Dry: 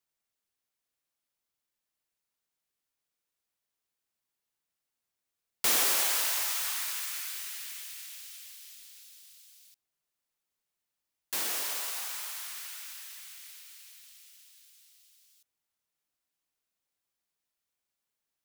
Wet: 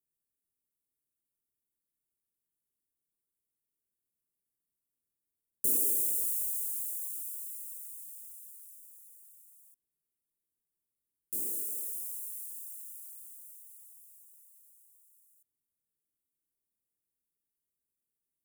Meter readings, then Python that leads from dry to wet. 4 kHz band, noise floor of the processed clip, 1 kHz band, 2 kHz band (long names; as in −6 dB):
below −30 dB, below −85 dBFS, below −30 dB, below −40 dB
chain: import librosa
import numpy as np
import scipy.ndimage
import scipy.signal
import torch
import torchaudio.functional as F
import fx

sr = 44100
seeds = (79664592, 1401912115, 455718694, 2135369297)

y = scipy.signal.sosfilt(scipy.signal.cheby2(4, 60, [1100.0, 3700.0], 'bandstop', fs=sr, output='sos'), x)